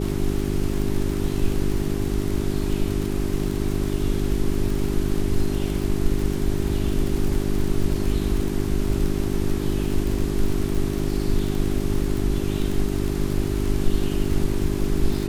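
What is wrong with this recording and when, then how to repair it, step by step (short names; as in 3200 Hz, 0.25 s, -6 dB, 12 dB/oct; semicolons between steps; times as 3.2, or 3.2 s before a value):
crackle 49/s -25 dBFS
hum 50 Hz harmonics 8 -26 dBFS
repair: de-click; de-hum 50 Hz, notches 8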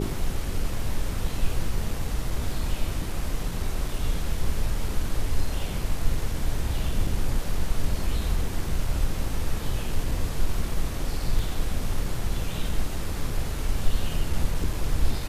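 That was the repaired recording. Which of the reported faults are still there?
none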